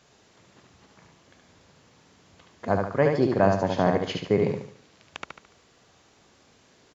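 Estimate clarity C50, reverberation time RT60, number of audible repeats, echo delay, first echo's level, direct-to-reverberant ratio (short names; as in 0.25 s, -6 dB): none, none, 4, 72 ms, -4.0 dB, none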